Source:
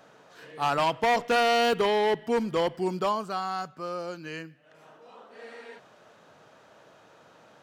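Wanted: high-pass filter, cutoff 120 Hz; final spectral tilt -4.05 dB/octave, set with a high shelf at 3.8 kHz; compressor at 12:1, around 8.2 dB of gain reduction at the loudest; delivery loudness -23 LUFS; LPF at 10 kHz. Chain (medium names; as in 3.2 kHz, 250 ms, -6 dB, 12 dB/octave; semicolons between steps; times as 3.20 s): high-pass 120 Hz; low-pass 10 kHz; treble shelf 3.8 kHz +6.5 dB; compression 12:1, threshold -26 dBFS; trim +9 dB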